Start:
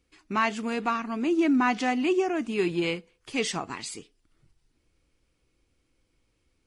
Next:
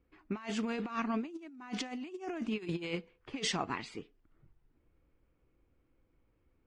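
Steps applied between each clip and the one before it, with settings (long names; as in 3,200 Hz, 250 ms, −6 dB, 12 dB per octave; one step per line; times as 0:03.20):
low-pass that shuts in the quiet parts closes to 1,500 Hz, open at −19.5 dBFS
compressor whose output falls as the input rises −31 dBFS, ratio −0.5
level −5.5 dB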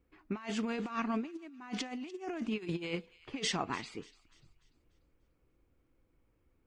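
delay with a high-pass on its return 294 ms, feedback 40%, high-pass 2,400 Hz, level −18 dB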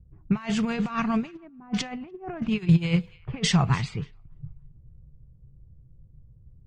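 low shelf with overshoot 200 Hz +12.5 dB, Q 3
low-pass that shuts in the quiet parts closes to 340 Hz, open at −30 dBFS
level +8 dB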